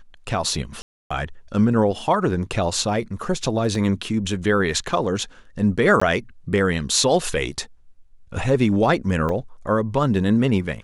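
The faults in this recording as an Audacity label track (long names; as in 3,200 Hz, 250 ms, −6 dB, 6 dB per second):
0.820000	1.100000	drop-out 285 ms
3.750000	3.750000	drop-out 2.7 ms
6.000000	6.010000	drop-out 15 ms
9.290000	9.290000	drop-out 3 ms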